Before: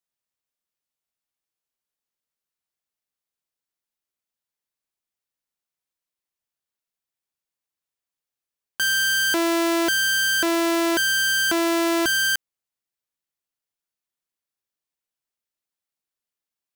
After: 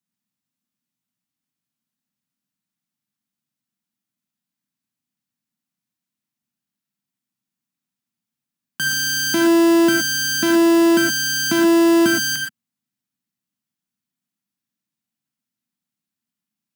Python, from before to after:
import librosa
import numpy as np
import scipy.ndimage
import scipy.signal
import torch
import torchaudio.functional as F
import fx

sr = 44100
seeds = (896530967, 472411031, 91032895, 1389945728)

y = scipy.signal.sosfilt(scipy.signal.butter(4, 120.0, 'highpass', fs=sr, output='sos'), x)
y = fx.low_shelf_res(y, sr, hz=320.0, db=11.5, q=3.0)
y = fx.rev_gated(y, sr, seeds[0], gate_ms=140, shape='rising', drr_db=2.5)